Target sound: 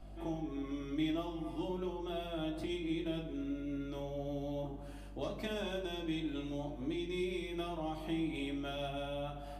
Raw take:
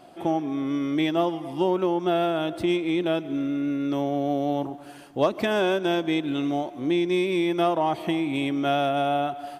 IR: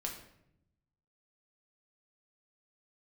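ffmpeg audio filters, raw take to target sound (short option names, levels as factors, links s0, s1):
-filter_complex "[0:a]aeval=exprs='val(0)+0.00891*(sin(2*PI*50*n/s)+sin(2*PI*2*50*n/s)/2+sin(2*PI*3*50*n/s)/3+sin(2*PI*4*50*n/s)/4+sin(2*PI*5*50*n/s)/5)':c=same,acrossover=split=190|3000[s0][s1][s2];[s1]acompressor=threshold=0.0355:ratio=6[s3];[s0][s3][s2]amix=inputs=3:normalize=0[s4];[1:a]atrim=start_sample=2205,asetrate=74970,aresample=44100[s5];[s4][s5]afir=irnorm=-1:irlink=0,volume=0.531"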